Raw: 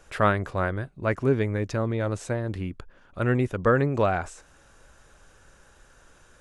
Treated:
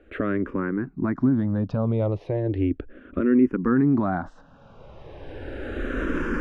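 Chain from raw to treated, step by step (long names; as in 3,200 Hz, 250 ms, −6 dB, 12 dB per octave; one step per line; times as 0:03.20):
camcorder AGC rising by 16 dB per second
high-frequency loss of the air 350 metres
brickwall limiter −16.5 dBFS, peak gain reduction 7 dB
parametric band 270 Hz +13.5 dB 1.2 octaves
frequency shifter mixed with the dry sound −0.35 Hz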